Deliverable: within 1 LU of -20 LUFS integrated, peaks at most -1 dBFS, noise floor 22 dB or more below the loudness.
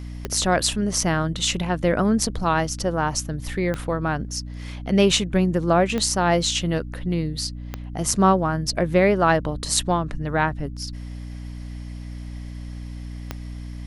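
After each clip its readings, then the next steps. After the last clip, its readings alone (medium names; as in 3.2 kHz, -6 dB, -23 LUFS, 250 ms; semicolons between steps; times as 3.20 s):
clicks found 5; hum 60 Hz; highest harmonic 300 Hz; hum level -31 dBFS; loudness -22.0 LUFS; peak level -1.5 dBFS; loudness target -20.0 LUFS
-> de-click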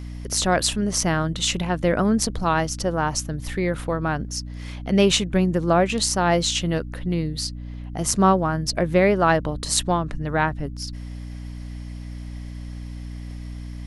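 clicks found 0; hum 60 Hz; highest harmonic 300 Hz; hum level -31 dBFS
-> hum notches 60/120/180/240/300 Hz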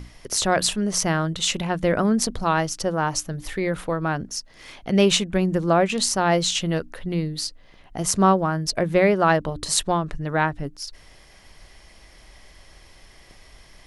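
hum not found; loudness -22.5 LUFS; peak level -1.5 dBFS; loudness target -20.0 LUFS
-> trim +2.5 dB; peak limiter -1 dBFS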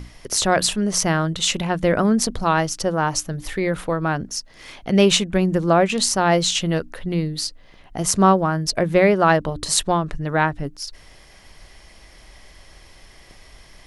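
loudness -20.0 LUFS; peak level -1.0 dBFS; noise floor -48 dBFS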